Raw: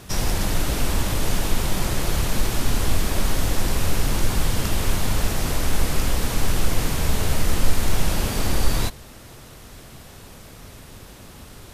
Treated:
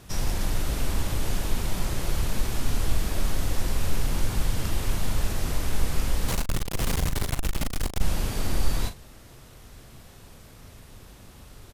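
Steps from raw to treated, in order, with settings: low shelf 110 Hz +4.5 dB; 6.28–8.01 fuzz box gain 24 dB, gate -32 dBFS; doubler 39 ms -10 dB; gain -7.5 dB

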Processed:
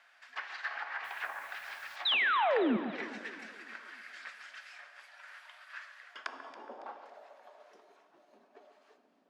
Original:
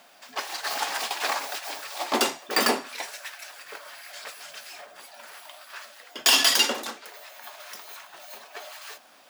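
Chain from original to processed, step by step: treble ducked by the level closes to 440 Hz, closed at -21 dBFS; high shelf 4300 Hz +6 dB; band-pass sweep 1700 Hz -> 260 Hz, 5.94–8.24; 1.04–1.96 requantised 10-bit, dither triangular; 2.05–2.77 painted sound fall 200–4100 Hz -26 dBFS; echo with dull and thin repeats by turns 0.139 s, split 1800 Hz, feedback 64%, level -11 dB; plate-style reverb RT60 2.1 s, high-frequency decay 0.95×, DRR 10.5 dB; gain -2.5 dB

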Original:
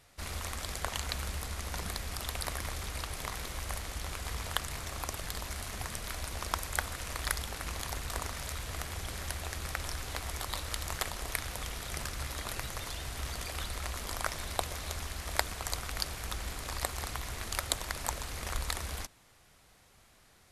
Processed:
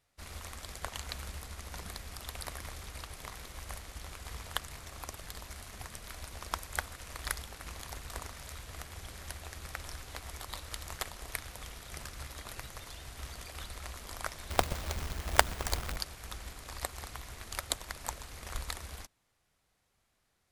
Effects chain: 14.5–15.97 half-waves squared off; upward expander 1.5:1, over -54 dBFS; gain +2 dB

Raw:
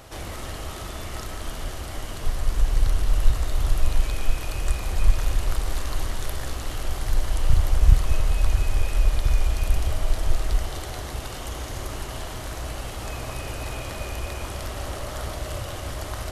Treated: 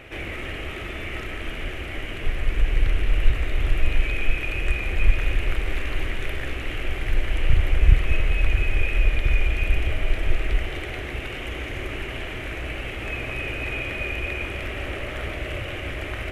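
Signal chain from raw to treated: EQ curve 190 Hz 0 dB, 370 Hz +6 dB, 1000 Hz -6 dB, 2400 Hz +14 dB, 4500 Hz -12 dB

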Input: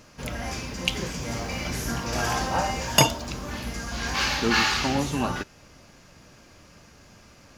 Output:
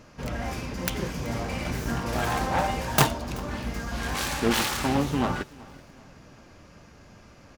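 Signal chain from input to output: self-modulated delay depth 0.71 ms; high shelf 2700 Hz -8.5 dB; on a send: feedback echo 0.38 s, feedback 45%, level -22.5 dB; on the sum: gain +2 dB

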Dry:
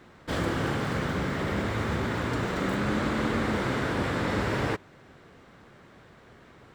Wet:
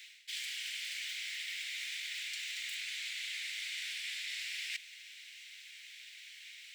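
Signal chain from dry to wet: steep high-pass 2200 Hz 48 dB/oct; reverse; compressor 6:1, threshold -53 dBFS, peak gain reduction 15 dB; reverse; gain +14 dB

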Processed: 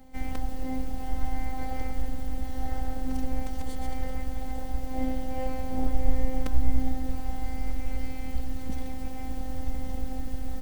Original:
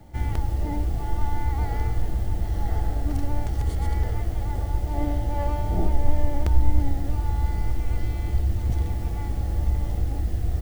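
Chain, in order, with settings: robotiser 260 Hz

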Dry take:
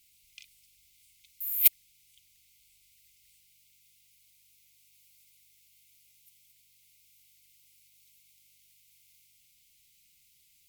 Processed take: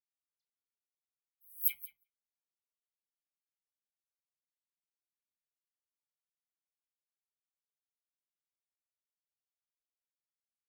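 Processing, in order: spectral gate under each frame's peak -10 dB weak; hard clip -21 dBFS, distortion -10 dB; dispersion lows, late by 78 ms, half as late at 2800 Hz; on a send: feedback echo 0.179 s, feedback 23%, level -7 dB; on the sum: shoebox room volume 770 m³, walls furnished, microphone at 1.5 m; spectral expander 2.5:1

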